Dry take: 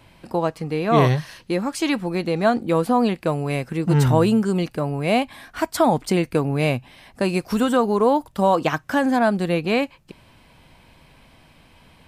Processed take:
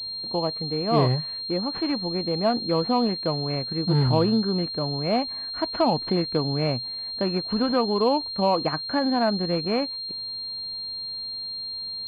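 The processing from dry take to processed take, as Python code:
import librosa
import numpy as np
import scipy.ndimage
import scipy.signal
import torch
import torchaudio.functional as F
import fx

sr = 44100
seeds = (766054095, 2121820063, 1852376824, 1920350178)

y = fx.peak_eq(x, sr, hz=1500.0, db=fx.steps((0.0, -9.5), (2.5, -2.0)), octaves=0.41)
y = fx.pwm(y, sr, carrier_hz=4200.0)
y = F.gain(torch.from_numpy(y), -4.0).numpy()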